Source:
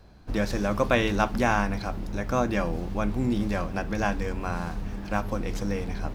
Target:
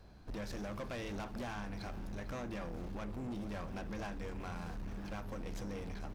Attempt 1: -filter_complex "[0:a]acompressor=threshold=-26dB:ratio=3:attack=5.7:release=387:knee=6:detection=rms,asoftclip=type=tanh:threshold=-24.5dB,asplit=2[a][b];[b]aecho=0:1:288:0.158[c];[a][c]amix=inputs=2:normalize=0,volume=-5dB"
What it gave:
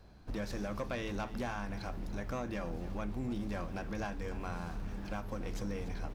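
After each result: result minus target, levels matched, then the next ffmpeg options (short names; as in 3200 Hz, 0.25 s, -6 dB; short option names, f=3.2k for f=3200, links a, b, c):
echo 0.162 s early; soft clip: distortion -8 dB
-filter_complex "[0:a]acompressor=threshold=-26dB:ratio=3:attack=5.7:release=387:knee=6:detection=rms,asoftclip=type=tanh:threshold=-24.5dB,asplit=2[a][b];[b]aecho=0:1:450:0.158[c];[a][c]amix=inputs=2:normalize=0,volume=-5dB"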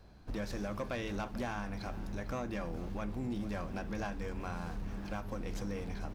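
soft clip: distortion -8 dB
-filter_complex "[0:a]acompressor=threshold=-26dB:ratio=3:attack=5.7:release=387:knee=6:detection=rms,asoftclip=type=tanh:threshold=-33dB,asplit=2[a][b];[b]aecho=0:1:450:0.158[c];[a][c]amix=inputs=2:normalize=0,volume=-5dB"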